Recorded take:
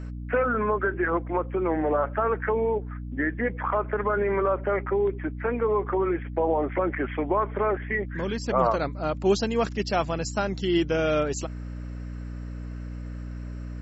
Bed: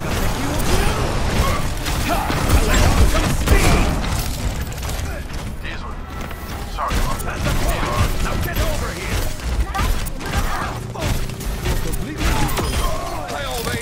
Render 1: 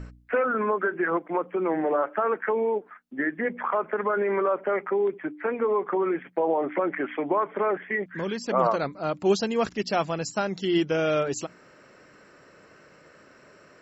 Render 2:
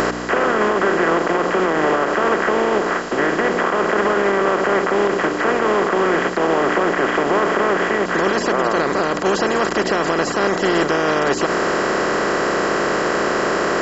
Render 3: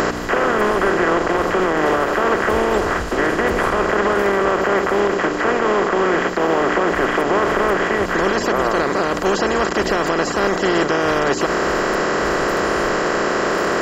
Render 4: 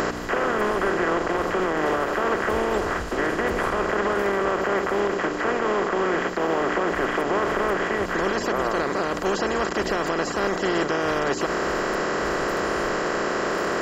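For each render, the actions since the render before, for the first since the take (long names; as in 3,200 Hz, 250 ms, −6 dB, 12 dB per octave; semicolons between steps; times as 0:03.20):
hum removal 60 Hz, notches 5
compressor on every frequency bin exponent 0.2; brickwall limiter −7.5 dBFS, peak gain reduction 6.5 dB
mix in bed −16 dB
level −6 dB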